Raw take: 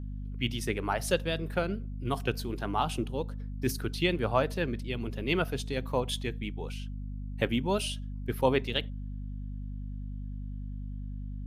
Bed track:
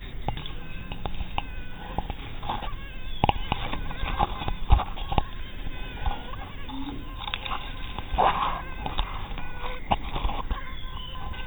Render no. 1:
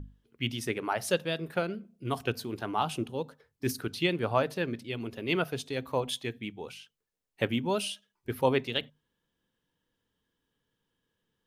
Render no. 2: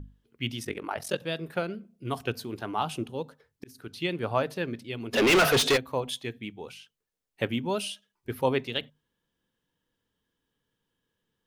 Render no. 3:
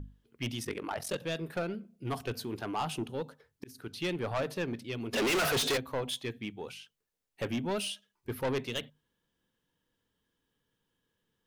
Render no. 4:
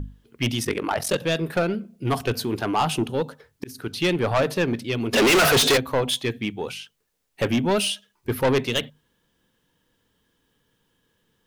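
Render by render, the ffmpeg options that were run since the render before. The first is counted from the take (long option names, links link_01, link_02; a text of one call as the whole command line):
ffmpeg -i in.wav -af "bandreject=frequency=50:width_type=h:width=6,bandreject=frequency=100:width_type=h:width=6,bandreject=frequency=150:width_type=h:width=6,bandreject=frequency=200:width_type=h:width=6,bandreject=frequency=250:width_type=h:width=6" out.wav
ffmpeg -i in.wav -filter_complex "[0:a]asettb=1/sr,asplit=3[link_01][link_02][link_03];[link_01]atrim=end=0.634[link_04];[link_02]atrim=start=0.63:end=1.22,asetpts=PTS-STARTPTS,afade=type=in:duration=0.004:curve=qsin,afade=type=out:start_time=0.586:duration=0.004:curve=qsin,aeval=exprs='val(0)*sin(2*PI*22*n/s)':channel_layout=same[link_05];[link_03]atrim=start=1.216[link_06];[link_04][link_05]acrossfade=duration=0.004:curve1=hsin:curve2=qsin[link_07];[link_07][link_06]acrossfade=duration=0.004:curve1=qsin:curve2=hsin,asplit=3[link_08][link_09][link_10];[link_08]afade=type=out:start_time=5.13:duration=0.02[link_11];[link_09]asplit=2[link_12][link_13];[link_13]highpass=frequency=720:poles=1,volume=37dB,asoftclip=type=tanh:threshold=-13dB[link_14];[link_12][link_14]amix=inputs=2:normalize=0,lowpass=frequency=4900:poles=1,volume=-6dB,afade=type=in:start_time=5.13:duration=0.02,afade=type=out:start_time=5.76:duration=0.02[link_15];[link_10]afade=type=in:start_time=5.76:duration=0.02[link_16];[link_11][link_15][link_16]amix=inputs=3:normalize=0,asplit=2[link_17][link_18];[link_17]atrim=end=3.64,asetpts=PTS-STARTPTS,afade=type=out:start_time=3.636:duration=0.004:curve=hsin[link_19];[link_18]atrim=start=3.64,asetpts=PTS-STARTPTS,afade=type=in:duration=0.78:curve=qsin[link_20];[link_19][link_20]concat=n=2:v=0:a=1" out.wav
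ffmpeg -i in.wav -af "asoftclip=type=tanh:threshold=-27dB" out.wav
ffmpeg -i in.wav -af "volume=11.5dB" out.wav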